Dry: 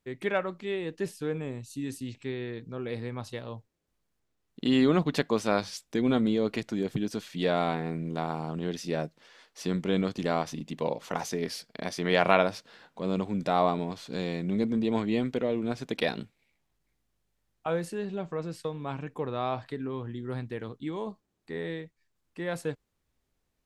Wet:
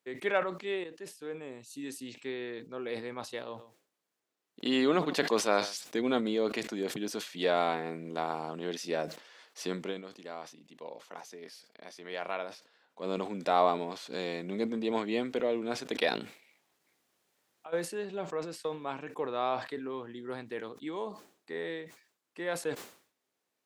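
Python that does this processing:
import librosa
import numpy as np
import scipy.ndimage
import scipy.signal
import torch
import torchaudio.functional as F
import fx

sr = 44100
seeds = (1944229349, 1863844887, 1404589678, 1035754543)

y = fx.echo_single(x, sr, ms=129, db=-21.0, at=(3.5, 5.83), fade=0.02)
y = fx.over_compress(y, sr, threshold_db=-41.0, ratio=-1.0, at=(16.09, 17.72), fade=0.02)
y = fx.edit(y, sr, fx.fade_in_from(start_s=0.84, length_s=1.12, floor_db=-17.0),
    fx.fade_down_up(start_s=9.78, length_s=3.34, db=-13.5, fade_s=0.17, curve='qsin'), tone=tone)
y = scipy.signal.sosfilt(scipy.signal.butter(2, 340.0, 'highpass', fs=sr, output='sos'), y)
y = fx.sustainer(y, sr, db_per_s=120.0)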